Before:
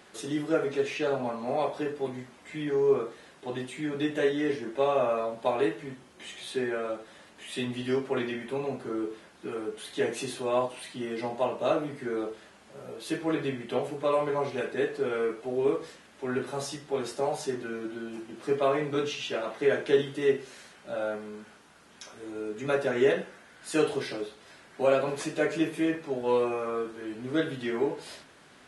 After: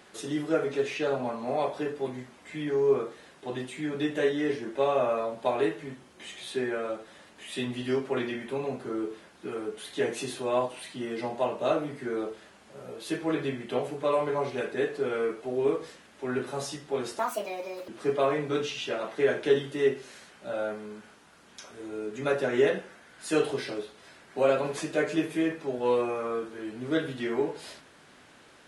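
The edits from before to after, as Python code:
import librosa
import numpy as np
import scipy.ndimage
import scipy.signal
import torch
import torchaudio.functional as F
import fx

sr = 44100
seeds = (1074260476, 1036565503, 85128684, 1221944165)

y = fx.edit(x, sr, fx.speed_span(start_s=17.19, length_s=1.12, speed=1.62), tone=tone)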